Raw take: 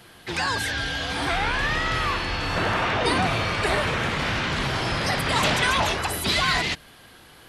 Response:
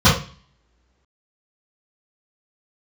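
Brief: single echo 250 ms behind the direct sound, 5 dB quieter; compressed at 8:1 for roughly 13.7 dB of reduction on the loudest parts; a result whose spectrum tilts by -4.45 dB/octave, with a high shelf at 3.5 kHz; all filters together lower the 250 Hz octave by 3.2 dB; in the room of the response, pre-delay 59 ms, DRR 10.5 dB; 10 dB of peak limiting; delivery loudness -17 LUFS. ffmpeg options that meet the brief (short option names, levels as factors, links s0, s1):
-filter_complex "[0:a]equalizer=f=250:t=o:g=-4.5,highshelf=f=3500:g=-6,acompressor=threshold=0.02:ratio=8,alimiter=level_in=2.99:limit=0.0631:level=0:latency=1,volume=0.335,aecho=1:1:250:0.562,asplit=2[s0][s1];[1:a]atrim=start_sample=2205,adelay=59[s2];[s1][s2]afir=irnorm=-1:irlink=0,volume=0.0178[s3];[s0][s3]amix=inputs=2:normalize=0,volume=12.6"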